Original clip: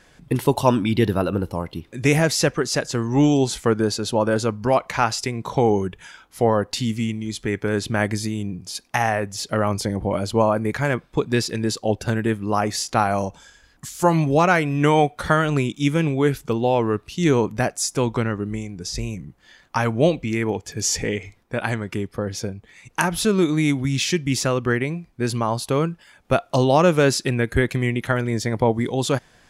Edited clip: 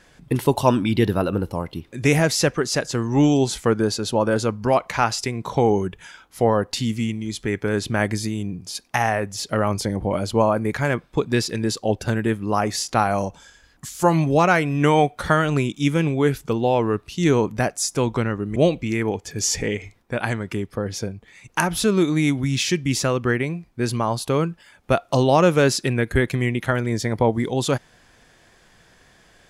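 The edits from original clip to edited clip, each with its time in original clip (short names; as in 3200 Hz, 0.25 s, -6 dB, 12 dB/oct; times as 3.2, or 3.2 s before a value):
18.56–19.97 cut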